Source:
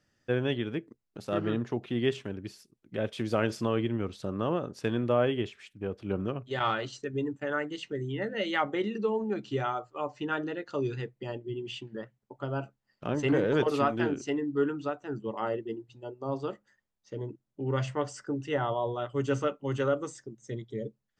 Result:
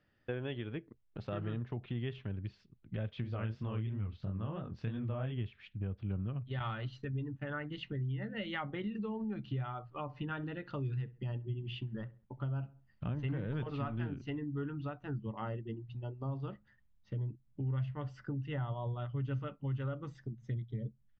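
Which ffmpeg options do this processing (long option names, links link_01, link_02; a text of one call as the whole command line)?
ffmpeg -i in.wav -filter_complex "[0:a]asplit=3[link_01][link_02][link_03];[link_01]afade=type=out:start_time=3.23:duration=0.02[link_04];[link_02]flanger=delay=20:depth=8:speed=3,afade=type=in:start_time=3.23:duration=0.02,afade=type=out:start_time=5.31:duration=0.02[link_05];[link_03]afade=type=in:start_time=5.31:duration=0.02[link_06];[link_04][link_05][link_06]amix=inputs=3:normalize=0,asplit=3[link_07][link_08][link_09];[link_07]afade=type=out:start_time=10.07:duration=0.02[link_10];[link_08]asplit=2[link_11][link_12];[link_12]adelay=66,lowpass=frequency=2000:poles=1,volume=-20.5dB,asplit=2[link_13][link_14];[link_14]adelay=66,lowpass=frequency=2000:poles=1,volume=0.37,asplit=2[link_15][link_16];[link_16]adelay=66,lowpass=frequency=2000:poles=1,volume=0.37[link_17];[link_11][link_13][link_15][link_17]amix=inputs=4:normalize=0,afade=type=in:start_time=10.07:duration=0.02,afade=type=out:start_time=14.09:duration=0.02[link_18];[link_09]afade=type=in:start_time=14.09:duration=0.02[link_19];[link_10][link_18][link_19]amix=inputs=3:normalize=0,lowpass=frequency=3700:width=0.5412,lowpass=frequency=3700:width=1.3066,asubboost=boost=11:cutoff=120,acompressor=threshold=-37dB:ratio=3,volume=-1dB" out.wav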